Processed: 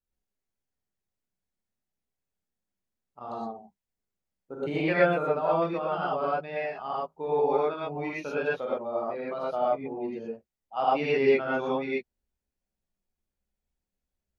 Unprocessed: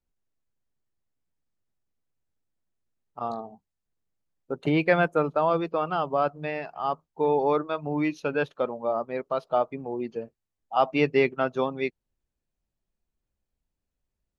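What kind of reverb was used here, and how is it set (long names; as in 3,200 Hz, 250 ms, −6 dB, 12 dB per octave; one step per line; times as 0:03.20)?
reverb whose tail is shaped and stops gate 140 ms rising, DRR −7 dB
level −9.5 dB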